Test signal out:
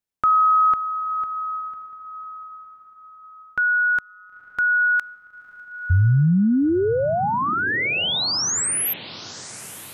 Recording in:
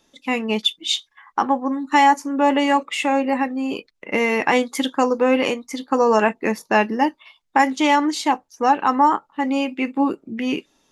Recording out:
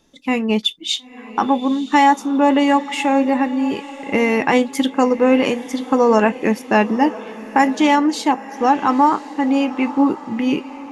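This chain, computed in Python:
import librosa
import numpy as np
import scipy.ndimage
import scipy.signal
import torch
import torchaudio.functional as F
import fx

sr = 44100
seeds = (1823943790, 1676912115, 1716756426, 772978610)

y = fx.low_shelf(x, sr, hz=320.0, db=8.5)
y = fx.echo_diffused(y, sr, ms=974, feedback_pct=42, wet_db=-15.5)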